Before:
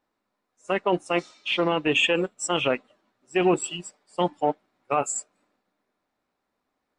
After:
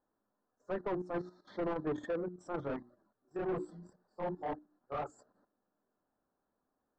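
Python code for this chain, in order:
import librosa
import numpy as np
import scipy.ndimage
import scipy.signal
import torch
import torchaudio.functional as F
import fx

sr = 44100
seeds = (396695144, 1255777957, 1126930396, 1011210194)

y = scipy.signal.sosfilt(scipy.signal.cheby1(3, 1.0, [1700.0, 4100.0], 'bandstop', fs=sr, output='sos'), x)
y = fx.high_shelf(y, sr, hz=3500.0, db=3.0)
y = fx.hum_notches(y, sr, base_hz=60, count=6)
y = fx.level_steps(y, sr, step_db=12)
y = np.clip(10.0 ** (24.0 / 20.0) * y, -1.0, 1.0) / 10.0 ** (24.0 / 20.0)
y = fx.chorus_voices(y, sr, voices=2, hz=1.0, base_ms=27, depth_ms=3.0, mix_pct=65, at=(2.66, 5.17), fade=0.02)
y = 10.0 ** (-31.5 / 20.0) * np.tanh(y / 10.0 ** (-31.5 / 20.0))
y = fx.spacing_loss(y, sr, db_at_10k=39)
y = F.gain(torch.from_numpy(y), 2.5).numpy()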